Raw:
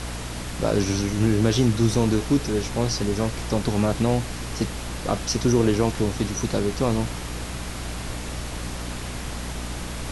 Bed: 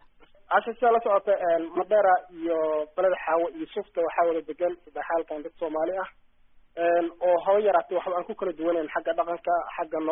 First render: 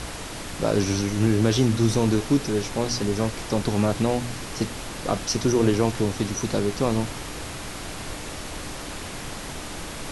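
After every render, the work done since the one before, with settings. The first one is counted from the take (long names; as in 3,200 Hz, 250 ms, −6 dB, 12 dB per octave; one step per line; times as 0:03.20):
hum removal 60 Hz, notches 4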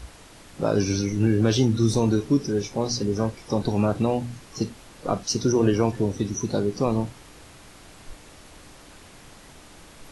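noise reduction from a noise print 13 dB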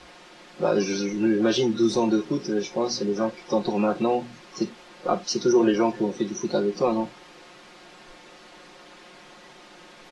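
three-way crossover with the lows and the highs turned down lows −20 dB, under 210 Hz, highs −19 dB, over 5,800 Hz
comb filter 5.6 ms, depth 86%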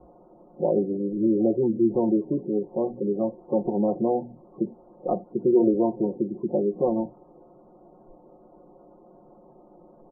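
inverse Chebyshev low-pass filter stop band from 4,400 Hz, stop band 80 dB
gate on every frequency bin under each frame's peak −30 dB strong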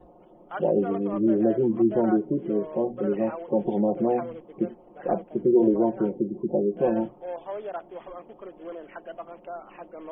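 mix in bed −13 dB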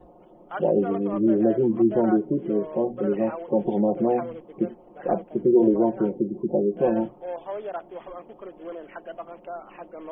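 level +1.5 dB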